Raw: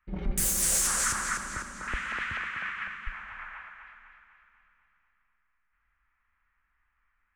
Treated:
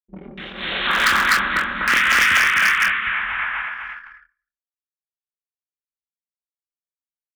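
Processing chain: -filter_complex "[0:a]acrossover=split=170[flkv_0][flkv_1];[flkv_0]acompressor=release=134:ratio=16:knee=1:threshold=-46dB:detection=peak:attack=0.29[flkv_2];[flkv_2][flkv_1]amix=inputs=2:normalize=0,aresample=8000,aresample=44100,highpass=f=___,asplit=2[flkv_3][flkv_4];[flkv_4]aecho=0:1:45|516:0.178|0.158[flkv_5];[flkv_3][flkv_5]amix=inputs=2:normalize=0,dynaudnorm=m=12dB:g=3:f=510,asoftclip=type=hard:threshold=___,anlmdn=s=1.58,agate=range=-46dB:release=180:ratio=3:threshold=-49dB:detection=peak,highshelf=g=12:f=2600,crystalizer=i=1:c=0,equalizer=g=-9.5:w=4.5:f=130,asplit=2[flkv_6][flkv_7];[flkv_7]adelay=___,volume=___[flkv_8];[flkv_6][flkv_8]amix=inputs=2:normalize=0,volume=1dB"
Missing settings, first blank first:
48, -16dB, 26, -6.5dB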